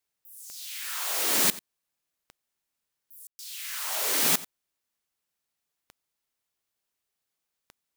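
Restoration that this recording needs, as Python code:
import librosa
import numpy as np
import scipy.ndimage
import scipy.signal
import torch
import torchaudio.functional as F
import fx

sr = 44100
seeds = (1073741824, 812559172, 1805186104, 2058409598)

y = fx.fix_declick_ar(x, sr, threshold=10.0)
y = fx.fix_ambience(y, sr, seeds[0], print_start_s=5.05, print_end_s=5.55, start_s=3.27, end_s=3.39)
y = fx.fix_echo_inverse(y, sr, delay_ms=90, level_db=-18.5)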